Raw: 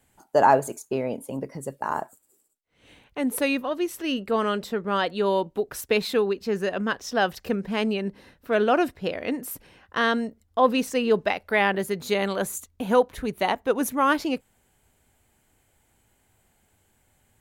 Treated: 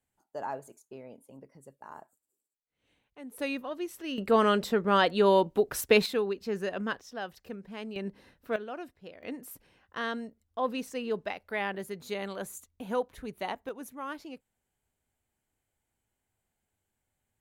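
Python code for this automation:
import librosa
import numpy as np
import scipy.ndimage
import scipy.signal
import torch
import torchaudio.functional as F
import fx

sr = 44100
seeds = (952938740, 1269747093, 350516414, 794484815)

y = fx.gain(x, sr, db=fx.steps((0.0, -19.0), (3.39, -9.0), (4.18, 1.0), (6.06, -6.5), (7.01, -15.0), (7.96, -7.0), (8.56, -19.0), (9.23, -11.0), (13.69, -17.5)))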